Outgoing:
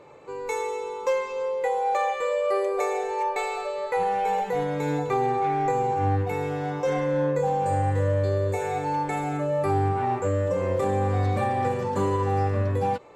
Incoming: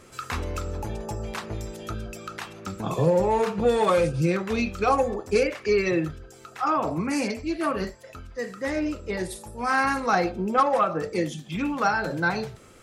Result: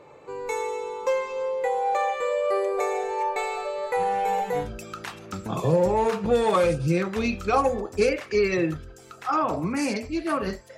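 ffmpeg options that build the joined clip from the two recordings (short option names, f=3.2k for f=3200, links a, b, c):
-filter_complex "[0:a]asettb=1/sr,asplit=3[a][b][c];[a]atrim=end=3.834[d];[b]atrim=start=3.83:end=4.7,asetpts=PTS-STARTPTS,afade=t=in:d=0.004:c=qsin,afade=t=out:st=0.866:d=0.004:c=qsin,highshelf=f=8.9k:g=8.5[e];[c]atrim=start=4.696[f];[d][e]acrossfade=d=0.004:c1=hsin:c2=qsin[g];[g][f]acrossfade=d=0.004:c1=qsin:c2=hsin,apad=whole_dur=10.77,atrim=end=10.77,atrim=end=4.7,asetpts=PTS-STARTPTS[h];[1:a]atrim=start=1.92:end=8.11,asetpts=PTS-STARTPTS[i];[h][i]acrossfade=d=0.12:c1=tri:c2=tri"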